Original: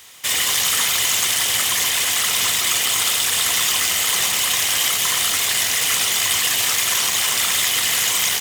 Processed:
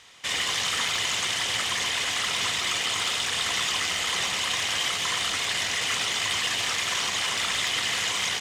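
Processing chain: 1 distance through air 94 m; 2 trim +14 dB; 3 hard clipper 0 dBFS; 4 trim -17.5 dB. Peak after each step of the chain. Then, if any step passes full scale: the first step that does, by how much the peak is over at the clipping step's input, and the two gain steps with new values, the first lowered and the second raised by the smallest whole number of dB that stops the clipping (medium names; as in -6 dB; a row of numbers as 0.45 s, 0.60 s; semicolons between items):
-9.5 dBFS, +4.5 dBFS, 0.0 dBFS, -17.5 dBFS; step 2, 4.5 dB; step 2 +9 dB, step 4 -12.5 dB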